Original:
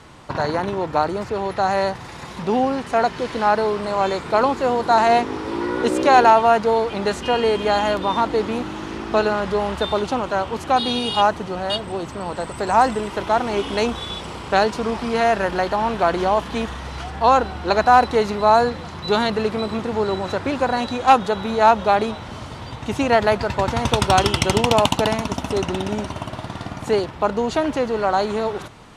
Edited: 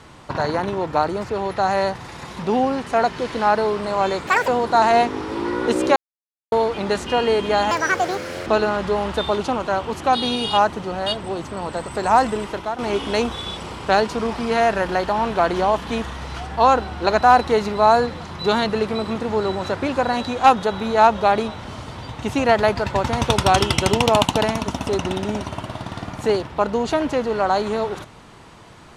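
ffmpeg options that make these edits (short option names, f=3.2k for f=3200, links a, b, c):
-filter_complex "[0:a]asplit=8[a][b][c][d][e][f][g][h];[a]atrim=end=4.274[i];[b]atrim=start=4.27:end=4.64,asetpts=PTS-STARTPTS,asetrate=77616,aresample=44100,atrim=end_sample=9271,asetpts=PTS-STARTPTS[j];[c]atrim=start=4.636:end=6.12,asetpts=PTS-STARTPTS,afade=t=out:st=1.48:d=0.004:c=hsin[k];[d]atrim=start=6.12:end=6.68,asetpts=PTS-STARTPTS,volume=0[l];[e]atrim=start=6.68:end=7.874,asetpts=PTS-STARTPTS,afade=t=in:d=0.004:c=hsin[m];[f]atrim=start=7.87:end=9.1,asetpts=PTS-STARTPTS,asetrate=71883,aresample=44100[n];[g]atrim=start=9.096:end=13.42,asetpts=PTS-STARTPTS,afade=t=out:st=3.974:d=0.35:silence=0.237137[o];[h]atrim=start=13.42,asetpts=PTS-STARTPTS,afade=t=in:d=0.004:c=hsin:silence=0.237137[p];[i][j]acrossfade=d=0.004:c1=hsin:c2=hsin[q];[k][l][m]concat=n=3:v=0:a=1[r];[q][r]acrossfade=d=0.004:c1=hsin:c2=hsin[s];[s][n]acrossfade=d=0.004:c1=hsin:c2=hsin[t];[o][p]concat=n=2:v=0:a=1[u];[t][u]acrossfade=d=0.004:c1=hsin:c2=hsin"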